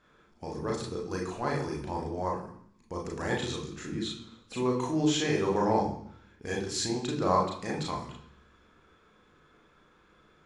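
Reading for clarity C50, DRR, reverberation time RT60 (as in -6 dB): 6.5 dB, -1.5 dB, 0.65 s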